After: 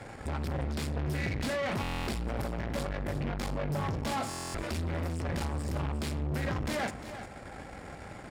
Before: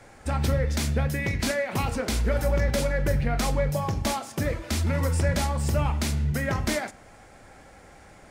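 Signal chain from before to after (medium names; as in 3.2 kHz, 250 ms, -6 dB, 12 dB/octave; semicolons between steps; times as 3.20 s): in parallel at 0 dB: compressor with a negative ratio -31 dBFS, ratio -0.5; on the sum: bass shelf 230 Hz +7 dB; band-stop 6.1 kHz, Q 7.9; valve stage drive 26 dB, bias 0.75; high-pass 91 Hz 6 dB/octave; treble shelf 7.3 kHz -7.5 dB; on a send: delay 353 ms -12 dB; on the sum: buffer glitch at 1.82/4.29 s, samples 1024, times 10; trim -2.5 dB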